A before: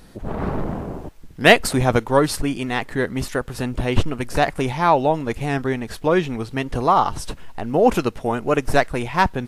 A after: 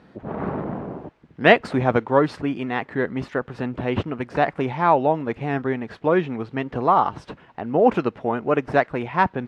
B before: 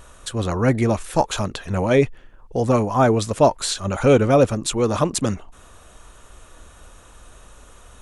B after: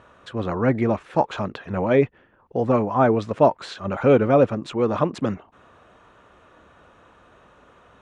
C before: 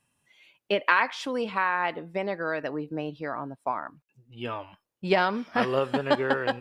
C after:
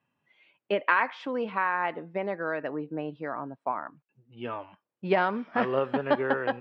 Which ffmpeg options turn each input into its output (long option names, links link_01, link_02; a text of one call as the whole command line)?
ffmpeg -i in.wav -af "highpass=130,lowpass=2300,volume=-1dB" out.wav